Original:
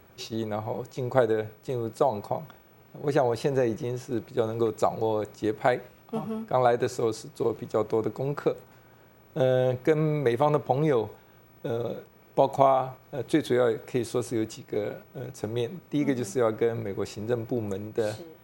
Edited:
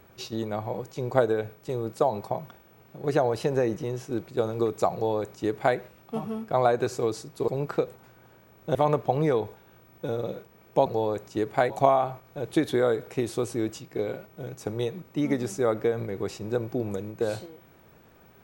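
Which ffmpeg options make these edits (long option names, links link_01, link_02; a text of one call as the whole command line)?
ffmpeg -i in.wav -filter_complex "[0:a]asplit=5[link_01][link_02][link_03][link_04][link_05];[link_01]atrim=end=7.482[link_06];[link_02]atrim=start=8.158:end=9.432[link_07];[link_03]atrim=start=10.358:end=12.472[link_08];[link_04]atrim=start=4.928:end=5.772[link_09];[link_05]atrim=start=12.468[link_10];[link_06][link_07]acrossfade=duration=0.004:curve1=hsin:curve2=hsin[link_11];[link_11][link_08]acrossfade=duration=0.004:curve1=hsin:curve2=hsin[link_12];[link_12][link_09]acrossfade=duration=0.004:curve1=hsin:curve2=hsin[link_13];[link_13][link_10]acrossfade=duration=0.004:curve1=hsin:curve2=hsin" out.wav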